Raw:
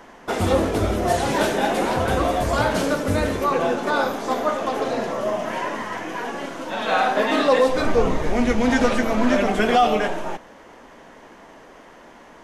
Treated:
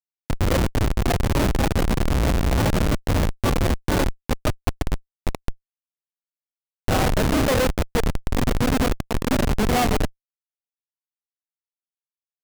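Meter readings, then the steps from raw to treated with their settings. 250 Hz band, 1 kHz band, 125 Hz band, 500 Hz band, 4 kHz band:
-1.5 dB, -6.5 dB, +6.5 dB, -6.0 dB, -1.0 dB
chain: Schmitt trigger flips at -15.5 dBFS; trim +3 dB

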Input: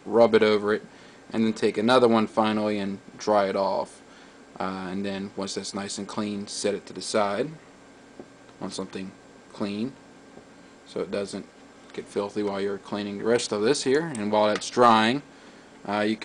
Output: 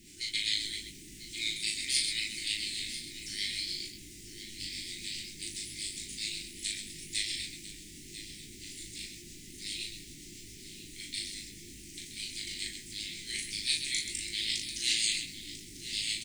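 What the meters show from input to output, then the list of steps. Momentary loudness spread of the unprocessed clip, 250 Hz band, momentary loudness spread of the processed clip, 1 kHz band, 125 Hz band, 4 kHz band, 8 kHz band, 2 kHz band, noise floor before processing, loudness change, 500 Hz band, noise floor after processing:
15 LU, -24.0 dB, 16 LU, under -40 dB, -15.5 dB, +3.0 dB, +3.0 dB, -6.0 dB, -51 dBFS, -9.0 dB, -35.0 dB, -49 dBFS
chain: rotary cabinet horn 7.5 Hz; spectral gate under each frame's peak -25 dB weak; pre-emphasis filter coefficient 0.97; added noise pink -67 dBFS; Chebyshev band-stop 350–2000 Hz, order 4; loudspeakers at several distances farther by 13 m -3 dB, 45 m -8 dB; level rider gain up to 5.5 dB; peaking EQ 470 Hz +10 dB 1.8 oct; doubling 20 ms -5.5 dB; delay 994 ms -13 dB; trim +7.5 dB

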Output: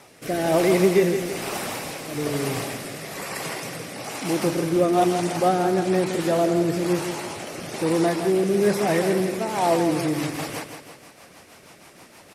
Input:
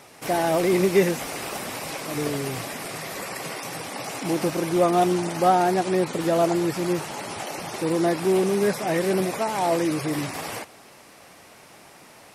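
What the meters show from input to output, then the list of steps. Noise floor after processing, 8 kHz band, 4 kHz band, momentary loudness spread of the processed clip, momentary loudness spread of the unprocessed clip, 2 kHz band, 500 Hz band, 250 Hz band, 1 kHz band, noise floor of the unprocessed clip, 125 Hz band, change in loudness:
-50 dBFS, +0.5 dB, +1.0 dB, 13 LU, 12 LU, +0.5 dB, +1.5 dB, +1.5 dB, -1.0 dB, -49 dBFS, +2.0 dB, +1.0 dB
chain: rotary cabinet horn 1.1 Hz, later 6.3 Hz, at 9.49 s; feedback delay 164 ms, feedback 46%, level -8 dB; trim +2.5 dB

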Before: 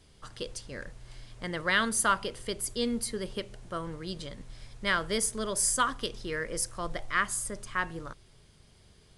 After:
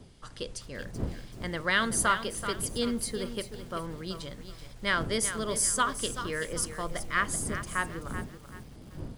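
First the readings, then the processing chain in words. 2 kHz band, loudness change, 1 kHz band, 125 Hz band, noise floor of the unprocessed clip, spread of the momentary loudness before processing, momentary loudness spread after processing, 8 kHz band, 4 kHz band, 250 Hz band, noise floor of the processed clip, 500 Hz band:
+0.5 dB, 0.0 dB, +0.5 dB, +4.5 dB, -59 dBFS, 17 LU, 17 LU, +0.5 dB, +0.5 dB, +1.5 dB, -49 dBFS, +0.5 dB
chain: wind noise 220 Hz -43 dBFS; bit-crushed delay 382 ms, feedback 35%, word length 8-bit, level -10 dB

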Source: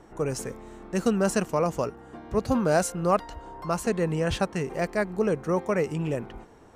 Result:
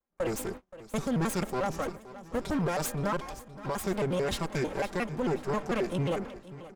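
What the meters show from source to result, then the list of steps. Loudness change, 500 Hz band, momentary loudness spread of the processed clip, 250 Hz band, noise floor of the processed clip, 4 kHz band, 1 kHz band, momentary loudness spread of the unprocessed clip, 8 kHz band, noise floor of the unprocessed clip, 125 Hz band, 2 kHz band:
-5.0 dB, -6.0 dB, 9 LU, -4.5 dB, -54 dBFS, -1.0 dB, -4.5 dB, 10 LU, -4.0 dB, -51 dBFS, -3.5 dB, -3.5 dB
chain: comb filter that takes the minimum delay 4.3 ms; gate -39 dBFS, range -37 dB; peak limiter -22 dBFS, peak gain reduction 10 dB; feedback delay 523 ms, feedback 48%, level -16.5 dB; vibrato with a chosen wave square 5.6 Hz, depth 250 cents

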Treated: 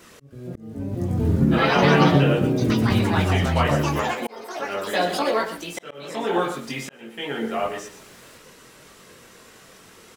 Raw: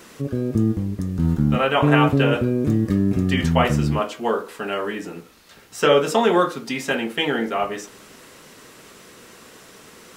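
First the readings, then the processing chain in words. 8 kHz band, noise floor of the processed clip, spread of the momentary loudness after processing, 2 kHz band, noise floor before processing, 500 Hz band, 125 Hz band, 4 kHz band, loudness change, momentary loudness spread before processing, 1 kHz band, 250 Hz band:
-0.5 dB, -49 dBFS, 18 LU, -0.5 dB, -47 dBFS, -2.5 dB, -0.5 dB, -1.5 dB, -1.0 dB, 11 LU, -0.5 dB, -2.0 dB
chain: chorus voices 4, 0.81 Hz, delay 22 ms, depth 1.3 ms; ever faster or slower copies 306 ms, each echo +4 st, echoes 3; on a send: delay 120 ms -11.5 dB; on the sum: slow attack 665 ms

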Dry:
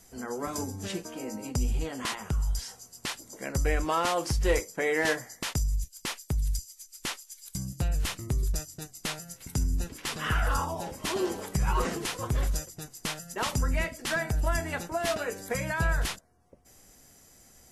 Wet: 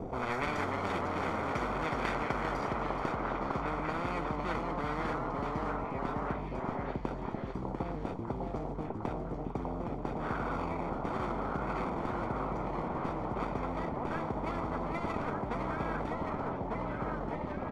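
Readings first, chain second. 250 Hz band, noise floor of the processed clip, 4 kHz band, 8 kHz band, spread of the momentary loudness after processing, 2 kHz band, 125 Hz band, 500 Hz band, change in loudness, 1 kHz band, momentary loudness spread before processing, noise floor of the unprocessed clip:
+0.5 dB, -39 dBFS, -14.0 dB, under -20 dB, 4 LU, -6.5 dB, -6.0 dB, -2.0 dB, -4.0 dB, +1.5 dB, 9 LU, -57 dBFS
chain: median filter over 41 samples; tilt EQ +3 dB/octave; comb 0.9 ms, depth 66%; low-pass sweep 570 Hz -> 260 Hz, 2.64–3.46 s; ever faster or slower copies 276 ms, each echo -1 st, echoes 3, each echo -6 dB; treble shelf 5.2 kHz +10.5 dB; repeats whose band climbs or falls 600 ms, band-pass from 730 Hz, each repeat 0.7 oct, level -1 dB; spectrum-flattening compressor 10:1; trim +1.5 dB

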